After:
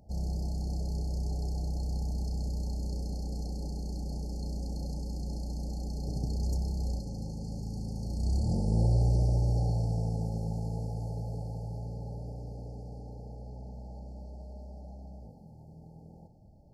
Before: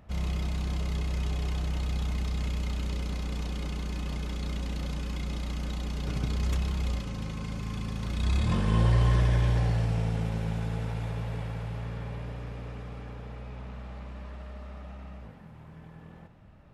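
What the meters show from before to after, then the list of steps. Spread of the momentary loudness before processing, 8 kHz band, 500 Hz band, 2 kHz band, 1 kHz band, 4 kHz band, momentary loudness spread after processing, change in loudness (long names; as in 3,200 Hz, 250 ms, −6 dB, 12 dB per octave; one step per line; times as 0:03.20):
18 LU, −2.5 dB, −2.5 dB, below −40 dB, −7.0 dB, −9.0 dB, 18 LU, −2.5 dB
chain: brick-wall band-stop 900–4,200 Hz
level −2.5 dB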